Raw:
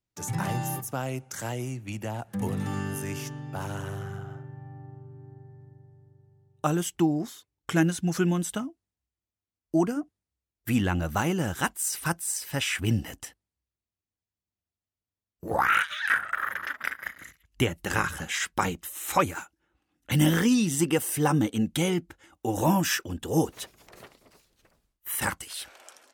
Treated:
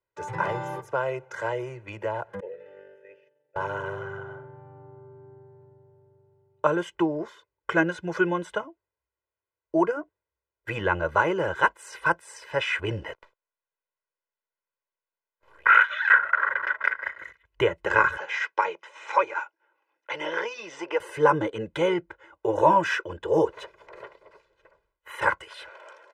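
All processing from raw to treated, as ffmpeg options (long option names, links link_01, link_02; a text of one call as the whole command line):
ffmpeg -i in.wav -filter_complex "[0:a]asettb=1/sr,asplit=3[link_01][link_02][link_03];[link_01]atrim=end=2.404[link_04];[link_02]atrim=start=2.4:end=3.56,asetpts=PTS-STARTPTS,afade=type=in:duration=0.004:curve=qsin,afade=type=out:start_time=1.156:duration=0.004:curve=qsin,agate=range=-33dB:threshold=-27dB:ratio=3:release=100:detection=peak,asplit=3[link_05][link_06][link_07];[link_05]bandpass=frequency=530:width_type=q:width=8,volume=0dB[link_08];[link_06]bandpass=frequency=1840:width_type=q:width=8,volume=-6dB[link_09];[link_07]bandpass=frequency=2480:width_type=q:width=8,volume=-9dB[link_10];[link_08][link_09][link_10]amix=inputs=3:normalize=0[link_11];[link_03]atrim=start=3.556[link_12];[link_04][link_11]acrossfade=duration=0.004:curve1=hsin:curve2=qsin[link_13];[link_13][link_12]acrossfade=duration=0.004:curve1=qsin:curve2=hsin,asettb=1/sr,asplit=3[link_14][link_15][link_16];[link_14]atrim=end=13.134[link_17];[link_15]atrim=start=13.13:end=15.66,asetpts=PTS-STARTPTS,afade=type=in:duration=0.004:curve=qsin,afade=type=out:start_time=2.526:duration=0.004:curve=qsin,aderivative,acompressor=threshold=-50dB:ratio=8:attack=3.2:release=140:knee=1:detection=peak,aeval=exprs='abs(val(0))':channel_layout=same[link_18];[link_16]atrim=start=15.656[link_19];[link_17][link_18]acrossfade=duration=0.004:curve1=hsin:curve2=qsin[link_20];[link_20][link_19]acrossfade=duration=0.004:curve1=qsin:curve2=hsin,asettb=1/sr,asplit=3[link_21][link_22][link_23];[link_21]atrim=end=18.174[link_24];[link_22]atrim=start=18.17:end=21,asetpts=PTS-STARTPTS,afade=type=in:duration=0.004:curve=qsin,afade=type=out:start_time=2.826:duration=0.004:curve=qsin,aeval=exprs='if(lt(val(0),0),0.708*val(0),val(0))':channel_layout=same,acompressor=threshold=-32dB:ratio=1.5:attack=3.2:release=140:knee=1:detection=peak,highpass=430,equalizer=frequency=840:width_type=q:width=4:gain=5,equalizer=frequency=2400:width_type=q:width=4:gain=5,equalizer=frequency=5500:width_type=q:width=4:gain=7,lowpass=frequency=6900:width=0.5412,lowpass=frequency=6900:width=1.3066[link_25];[link_23]atrim=start=20.996[link_26];[link_24][link_25]acrossfade=duration=0.004:curve1=hsin:curve2=qsin[link_27];[link_27][link_26]acrossfade=duration=0.004:curve1=qsin:curve2=hsin,lowpass=6200,acrossover=split=350 2200:gain=0.158 1 0.1[link_28][link_29][link_30];[link_28][link_29][link_30]amix=inputs=3:normalize=0,aecho=1:1:2:0.98,volume=5.5dB" out.wav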